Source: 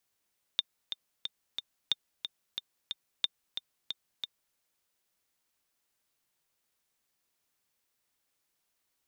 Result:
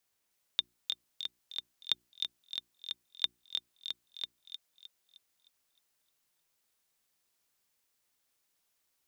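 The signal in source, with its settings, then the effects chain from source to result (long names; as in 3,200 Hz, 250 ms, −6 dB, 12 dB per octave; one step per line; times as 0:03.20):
click track 181 BPM, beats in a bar 4, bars 3, 3,620 Hz, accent 8.5 dB −13 dBFS
mains-hum notches 60/120/180/240/300/360 Hz
on a send: delay with a high-pass on its return 308 ms, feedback 41%, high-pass 3,300 Hz, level −3 dB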